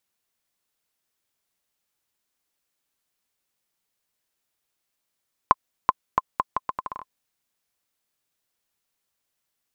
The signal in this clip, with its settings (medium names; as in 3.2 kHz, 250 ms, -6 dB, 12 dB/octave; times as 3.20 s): bouncing ball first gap 0.38 s, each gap 0.76, 1.04 kHz, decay 32 ms -1.5 dBFS